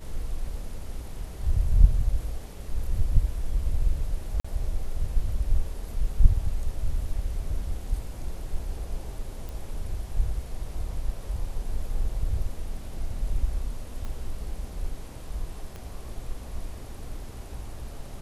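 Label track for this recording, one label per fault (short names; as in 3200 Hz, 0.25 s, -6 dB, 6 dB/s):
4.400000	4.450000	gap 45 ms
9.490000	9.490000	pop
14.050000	14.050000	pop -24 dBFS
15.760000	15.760000	pop -26 dBFS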